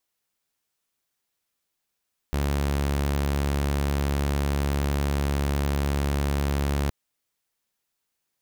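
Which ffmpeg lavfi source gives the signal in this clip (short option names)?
-f lavfi -i "aevalsrc='0.1*(2*mod(70.8*t,1)-1)':d=4.57:s=44100"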